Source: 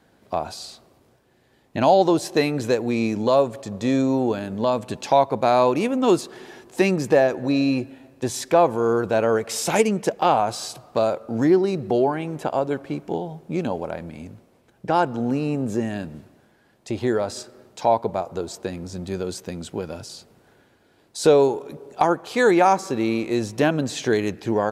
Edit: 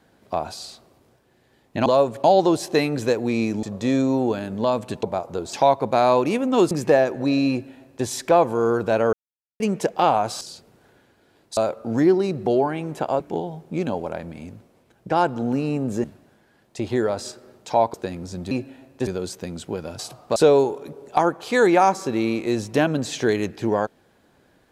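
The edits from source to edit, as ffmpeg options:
-filter_complex "[0:a]asplit=18[a][b][c][d][e][f][g][h][i][j][k][l][m][n][o][p][q][r];[a]atrim=end=1.862[s];[b]atrim=start=3.248:end=3.632[t];[c]atrim=start=1.858:end=3.252[u];[d]atrim=start=3.628:end=5.032[v];[e]atrim=start=18.048:end=18.552[w];[f]atrim=start=5.028:end=6.212[x];[g]atrim=start=6.938:end=9.36,asetpts=PTS-STARTPTS,afade=t=out:st=2.418:d=0.004:c=hsin[y];[h]atrim=start=9.36:end=9.83,asetpts=PTS-STARTPTS,volume=0[z];[i]atrim=start=9.83:end=10.642,asetpts=PTS-STARTPTS,afade=t=in:d=0.004:c=hsin[aa];[j]atrim=start=20.038:end=21.202[ab];[k]atrim=start=11.008:end=12.642[ac];[l]atrim=start=12.978:end=15.822[ad];[m]atrim=start=16.148:end=18.052[ae];[n]atrim=start=18.548:end=19.122[af];[o]atrim=start=7.728:end=8.292[ag];[p]atrim=start=19.118:end=20.042[ah];[q]atrim=start=10.638:end=11.012[ai];[r]atrim=start=21.198[aj];[s][t]acrossfade=d=0.004:c1=hsin:c2=hsin[ak];[ak][u]acrossfade=d=0.004:c1=hsin:c2=hsin[al];[al][v]acrossfade=d=0.004:c1=hsin:c2=hsin[am];[am][w]acrossfade=d=0.004:c1=hsin:c2=hsin[an];[an][x]acrossfade=d=0.004:c1=hsin:c2=hsin[ao];[y][z][aa]concat=n=3:v=0:a=1[ap];[ao][ap]acrossfade=d=0.004:c1=hsin:c2=hsin[aq];[aq][ab]acrossfade=d=0.004:c1=hsin:c2=hsin[ar];[ar][ac]acrossfade=d=0.004:c1=hsin:c2=hsin[as];[as][ad]acrossfade=d=0.004:c1=hsin:c2=hsin[at];[at][ae]acrossfade=d=0.004:c1=hsin:c2=hsin[au];[au][af]acrossfade=d=0.004:c1=hsin:c2=hsin[av];[av][ag]acrossfade=d=0.004:c1=hsin:c2=hsin[aw];[aw][ah]acrossfade=d=0.004:c1=hsin:c2=hsin[ax];[ax][ai]acrossfade=d=0.004:c1=hsin:c2=hsin[ay];[ay][aj]acrossfade=d=0.004:c1=hsin:c2=hsin"

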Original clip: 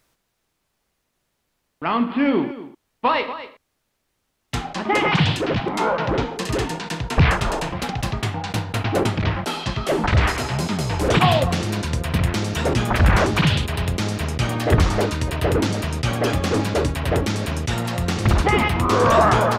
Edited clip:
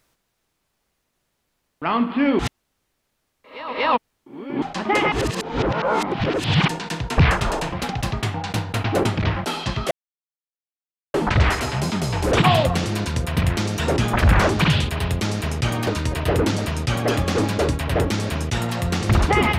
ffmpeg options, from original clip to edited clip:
-filter_complex "[0:a]asplit=7[a][b][c][d][e][f][g];[a]atrim=end=2.392[h];[b]atrim=start=2.388:end=4.622,asetpts=PTS-STARTPTS,areverse[i];[c]atrim=start=4.618:end=5.122[j];[d]atrim=start=5.118:end=6.682,asetpts=PTS-STARTPTS,areverse[k];[e]atrim=start=6.678:end=9.91,asetpts=PTS-STARTPTS,afade=t=out:st=3.228:d=0.004:c=hsin,apad=pad_dur=1.23[l];[f]atrim=start=9.91:end=14.642,asetpts=PTS-STARTPTS,afade=t=in:d=0.004:c=hsin[m];[g]atrim=start=15.028[n];[h][i]acrossfade=d=0.004:c1=hsin:c2=hsin[o];[o][j]acrossfade=d=0.004:c1=hsin:c2=hsin[p];[p][k]acrossfade=d=0.004:c1=hsin:c2=hsin[q];[l][m]concat=n=2:v=0:a=1[r];[q][r]acrossfade=d=0.004:c1=hsin:c2=hsin[s];[s][n]acrossfade=d=0.004:c1=hsin:c2=hsin"

